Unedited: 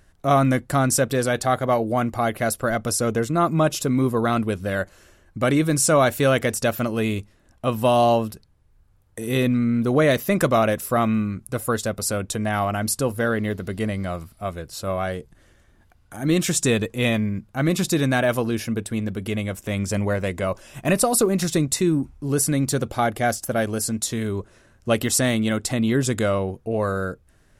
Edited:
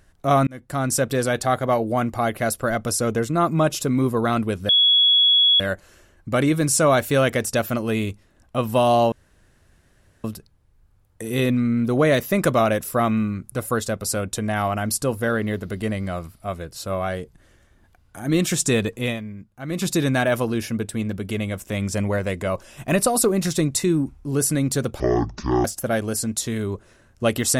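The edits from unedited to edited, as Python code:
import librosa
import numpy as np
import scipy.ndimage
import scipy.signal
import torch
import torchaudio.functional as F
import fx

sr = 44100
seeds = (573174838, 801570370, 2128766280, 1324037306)

y = fx.edit(x, sr, fx.fade_in_span(start_s=0.47, length_s=0.78, curve='qsin'),
    fx.insert_tone(at_s=4.69, length_s=0.91, hz=3360.0, db=-12.5),
    fx.insert_room_tone(at_s=8.21, length_s=1.12),
    fx.fade_down_up(start_s=16.95, length_s=0.9, db=-10.5, fade_s=0.21),
    fx.speed_span(start_s=22.97, length_s=0.33, speed=0.51), tone=tone)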